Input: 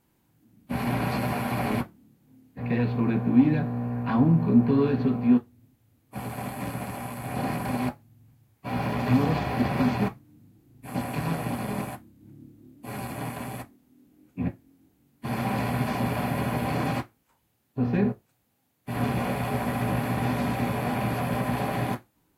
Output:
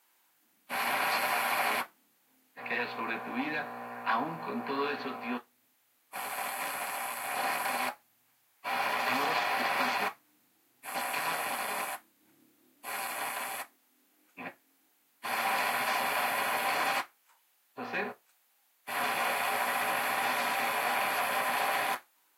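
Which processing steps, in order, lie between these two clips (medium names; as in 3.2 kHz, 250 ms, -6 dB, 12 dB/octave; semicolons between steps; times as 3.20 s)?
high-pass 990 Hz 12 dB/octave; trim +5.5 dB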